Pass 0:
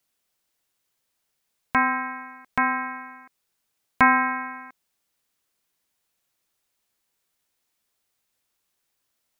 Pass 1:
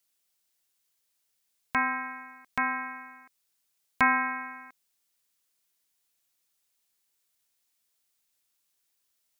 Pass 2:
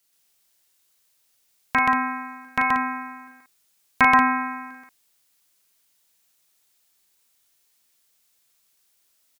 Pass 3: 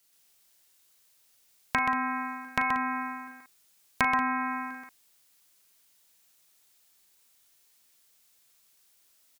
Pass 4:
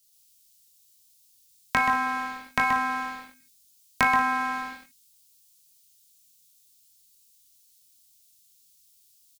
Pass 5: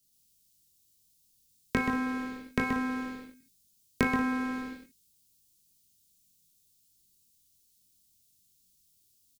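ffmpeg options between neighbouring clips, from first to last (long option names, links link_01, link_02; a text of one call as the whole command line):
ffmpeg -i in.wav -af "highshelf=frequency=2500:gain=9.5,volume=-8dB" out.wav
ffmpeg -i in.wav -af "aecho=1:1:37.9|128.3|183.7:0.562|0.891|0.447,volume=6dB" out.wav
ffmpeg -i in.wav -af "acompressor=threshold=-28dB:ratio=3,volume=1.5dB" out.wav
ffmpeg -i in.wav -filter_complex "[0:a]acrossover=split=220|3100[link_01][link_02][link_03];[link_02]aeval=exprs='sgn(val(0))*max(abs(val(0))-0.0075,0)':channel_layout=same[link_04];[link_01][link_04][link_03]amix=inputs=3:normalize=0,asplit=2[link_05][link_06];[link_06]adelay=22,volume=-5dB[link_07];[link_05][link_07]amix=inputs=2:normalize=0,volume=3dB" out.wav
ffmpeg -i in.wav -af "lowshelf=frequency=580:width_type=q:width=3:gain=11,volume=-7dB" out.wav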